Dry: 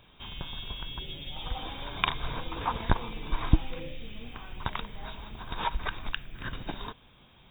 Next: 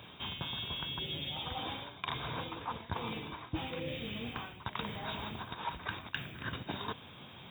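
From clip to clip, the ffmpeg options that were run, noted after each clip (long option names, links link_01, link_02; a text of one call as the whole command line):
ffmpeg -i in.wav -af "highpass=frequency=84:width=0.5412,highpass=frequency=84:width=1.3066,areverse,acompressor=threshold=-43dB:ratio=10,areverse,volume=7.5dB" out.wav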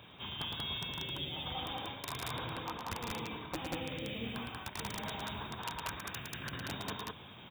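ffmpeg -i in.wav -af "aeval=exprs='(mod(23.7*val(0)+1,2)-1)/23.7':channel_layout=same,aecho=1:1:110.8|186.6:0.562|0.891,volume=-3.5dB" out.wav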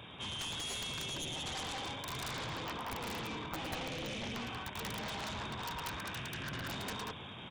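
ffmpeg -i in.wav -af "aresample=22050,aresample=44100,aeval=exprs='0.0531*(cos(1*acos(clip(val(0)/0.0531,-1,1)))-cos(1*PI/2))+0.0237*(cos(3*acos(clip(val(0)/0.0531,-1,1)))-cos(3*PI/2))+0.00531*(cos(7*acos(clip(val(0)/0.0531,-1,1)))-cos(7*PI/2))':channel_layout=same,volume=4.5dB" out.wav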